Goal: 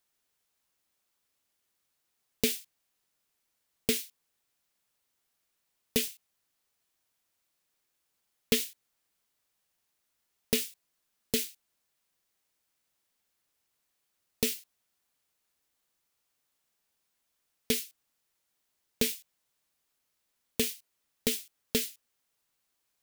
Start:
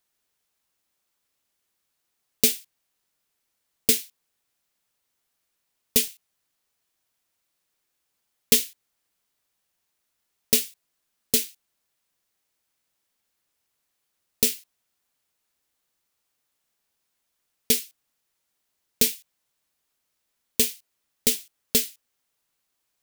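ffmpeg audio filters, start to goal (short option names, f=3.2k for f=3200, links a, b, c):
-filter_complex "[0:a]acrossover=split=3500[a][b];[b]acompressor=threshold=-24dB:ratio=4:attack=1:release=60[c];[a][c]amix=inputs=2:normalize=0,volume=-2dB"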